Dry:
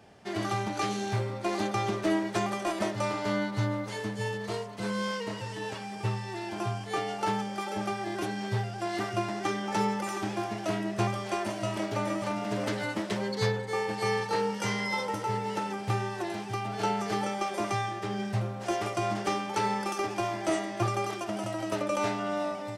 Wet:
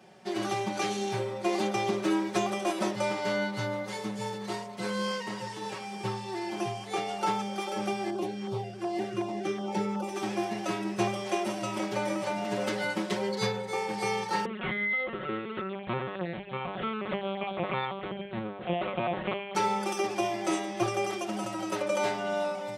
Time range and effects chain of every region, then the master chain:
0:08.10–0:10.16: high-shelf EQ 2,200 Hz −9 dB + auto-filter notch saw down 2.7 Hz 600–2,400 Hz
0:14.45–0:19.55: notch filter 880 Hz, Q 5.3 + linear-prediction vocoder at 8 kHz pitch kept
whole clip: high-pass filter 110 Hz; mains-hum notches 50/100/150/200 Hz; comb filter 5.4 ms, depth 92%; level −1.5 dB

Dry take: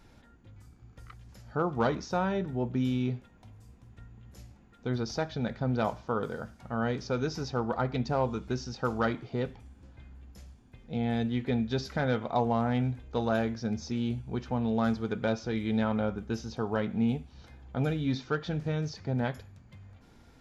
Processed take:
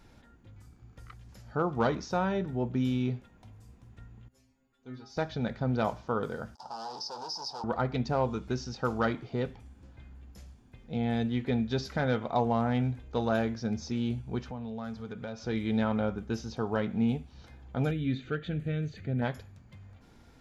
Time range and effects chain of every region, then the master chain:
0:04.28–0:05.17: parametric band 130 Hz −10.5 dB 0.43 octaves + stiff-string resonator 130 Hz, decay 0.36 s, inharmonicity 0.002
0:06.55–0:07.64: leveller curve on the samples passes 5 + pair of resonant band-passes 2,100 Hz, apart 2.5 octaves + downward compressor 2.5 to 1, threshold −36 dBFS
0:14.41–0:15.47: notch filter 340 Hz, Q 5.7 + downward compressor 2.5 to 1, threshold −39 dBFS
0:17.91–0:19.22: phaser with its sweep stopped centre 2,300 Hz, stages 4 + upward compression, threshold −39 dBFS
whole clip: no processing

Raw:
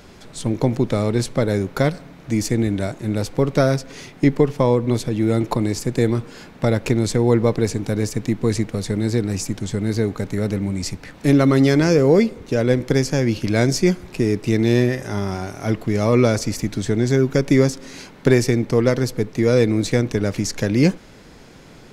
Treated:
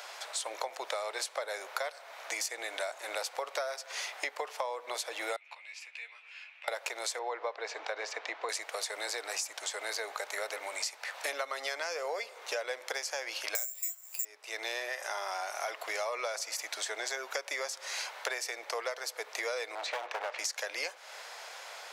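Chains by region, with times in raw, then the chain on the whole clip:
0:05.36–0:06.68: downward compressor 2 to 1, threshold −25 dBFS + resonant band-pass 2,500 Hz, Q 7.4 + double-tracking delay 13 ms −4.5 dB
0:07.19–0:08.49: high-pass filter 230 Hz 24 dB per octave + high-frequency loss of the air 200 metres
0:13.55–0:14.25: high-shelf EQ 2,700 Hz +8 dB + tuned comb filter 120 Hz, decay 0.18 s + bad sample-rate conversion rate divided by 6×, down filtered, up zero stuff
0:19.75–0:20.39: low-pass filter 2,700 Hz + gain into a clipping stage and back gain 23 dB
whole clip: Butterworth high-pass 610 Hz 36 dB per octave; downward compressor 10 to 1, threshold −37 dBFS; level +4.5 dB

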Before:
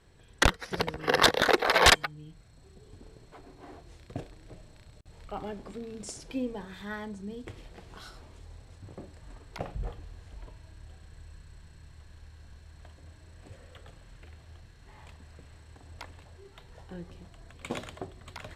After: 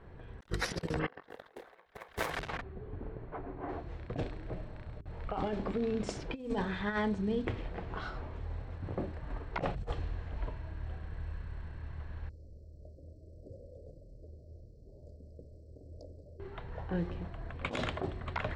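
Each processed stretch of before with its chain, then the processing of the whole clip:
0:00.99–0:03.69: low-pass filter 2,400 Hz + feedback echo at a low word length 224 ms, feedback 35%, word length 7 bits, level −5.5 dB
0:12.29–0:16.40: Chebyshev band-stop filter 600–4,700 Hz, order 5 + low-shelf EQ 350 Hz −10 dB
whole clip: low-pass that shuts in the quiet parts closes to 1,400 Hz, open at −26.5 dBFS; mains-hum notches 50/100/150/200/250/300/350/400 Hz; compressor whose output falls as the input rises −39 dBFS, ratio −0.5; level +2.5 dB

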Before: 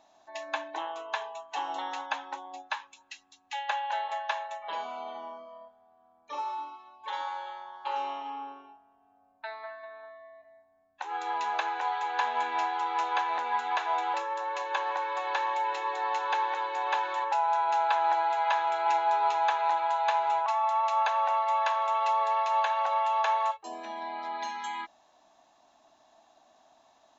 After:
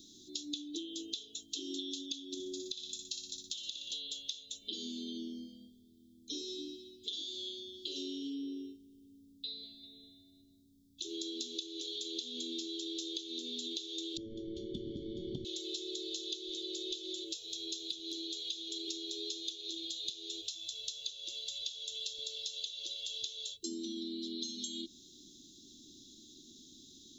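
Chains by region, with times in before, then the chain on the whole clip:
0:02.34–0:03.92: flutter between parallel walls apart 10.2 metres, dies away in 0.57 s + downward compressor 3 to 1, threshold −37 dBFS + notch filter 2,900 Hz, Q 20
0:14.17–0:15.45: mid-hump overdrive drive 12 dB, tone 1,400 Hz, clips at −15 dBFS + Savitzky-Golay smoothing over 41 samples
whole clip: Chebyshev band-stop filter 380–3,400 Hz, order 5; downward compressor 10 to 1, threshold −53 dBFS; level +16 dB

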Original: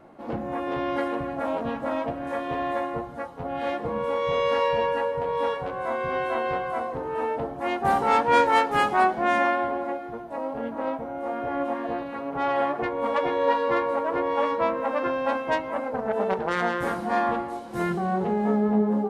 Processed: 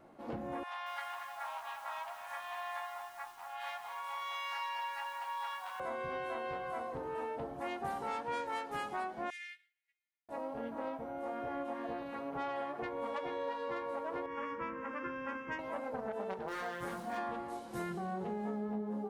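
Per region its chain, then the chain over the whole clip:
0:00.63–0:05.80: Butterworth high-pass 770 Hz 48 dB per octave + feedback echo at a low word length 231 ms, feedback 55%, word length 8 bits, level −9 dB
0:09.30–0:10.29: elliptic high-pass filter 2,000 Hz, stop band 50 dB + expander for the loud parts 2.5 to 1, over −53 dBFS
0:14.26–0:15.59: low-pass filter 6,300 Hz 24 dB per octave + phaser with its sweep stopped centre 1,700 Hz, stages 4
0:16.47–0:17.17: gain into a clipping stage and back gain 17 dB + surface crackle 570 per second −42 dBFS + micro pitch shift up and down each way 12 cents
whole clip: high-shelf EQ 4,000 Hz +6.5 dB; downward compressor 6 to 1, threshold −27 dBFS; level −8.5 dB

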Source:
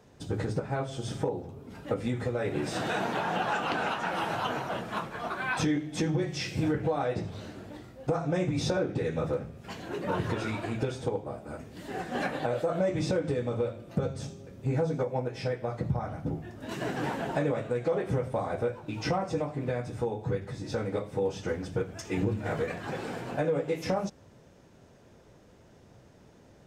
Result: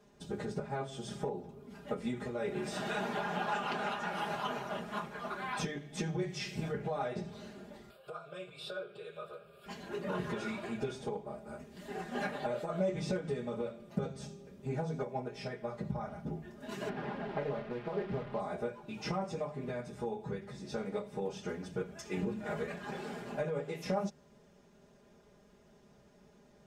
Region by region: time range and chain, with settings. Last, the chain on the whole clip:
0:07.90–0:09.66: high-pass filter 880 Hz 6 dB per octave + phaser with its sweep stopped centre 1,300 Hz, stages 8 + upward compression, threshold −41 dBFS
0:16.89–0:18.40: linear delta modulator 64 kbit/s, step −32.5 dBFS + high-frequency loss of the air 390 metres + highs frequency-modulated by the lows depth 0.4 ms
whole clip: mains-hum notches 50/100/150 Hz; comb filter 4.9 ms, depth 90%; level −8 dB

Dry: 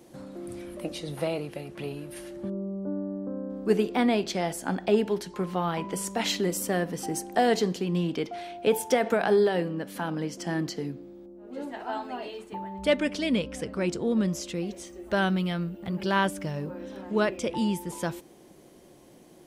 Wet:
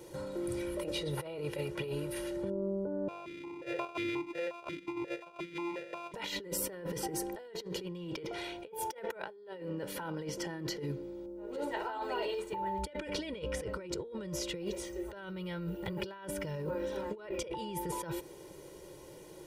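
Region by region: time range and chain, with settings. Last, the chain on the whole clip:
0:03.08–0:06.14: samples sorted by size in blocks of 128 samples + formant filter that steps through the vowels 5.6 Hz
whole clip: comb filter 2.1 ms, depth 83%; dynamic equaliser 7,300 Hz, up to −8 dB, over −49 dBFS, Q 0.79; compressor whose output falls as the input rises −35 dBFS, ratio −1; level −4.5 dB

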